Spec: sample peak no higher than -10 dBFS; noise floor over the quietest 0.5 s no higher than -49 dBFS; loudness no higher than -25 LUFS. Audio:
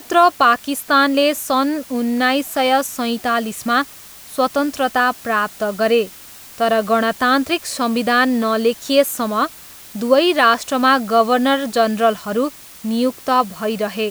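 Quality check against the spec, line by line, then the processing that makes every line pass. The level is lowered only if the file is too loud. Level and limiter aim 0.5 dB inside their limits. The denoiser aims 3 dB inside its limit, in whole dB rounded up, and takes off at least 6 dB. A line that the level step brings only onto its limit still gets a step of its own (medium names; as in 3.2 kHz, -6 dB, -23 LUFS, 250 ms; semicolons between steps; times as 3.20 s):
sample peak -1.5 dBFS: fail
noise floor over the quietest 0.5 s -39 dBFS: fail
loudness -17.5 LUFS: fail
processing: noise reduction 6 dB, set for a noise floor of -39 dBFS; trim -8 dB; peak limiter -10.5 dBFS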